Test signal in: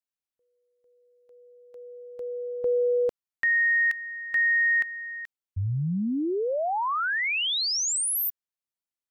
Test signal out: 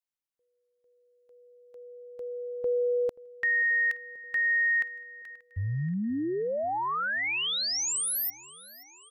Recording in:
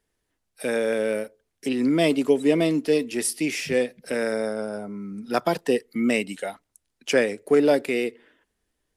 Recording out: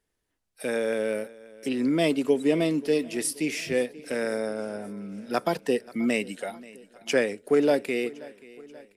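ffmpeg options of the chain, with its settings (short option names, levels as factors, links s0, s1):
-af "aecho=1:1:532|1064|1596|2128|2660:0.0891|0.0526|0.031|0.0183|0.0108,volume=0.708"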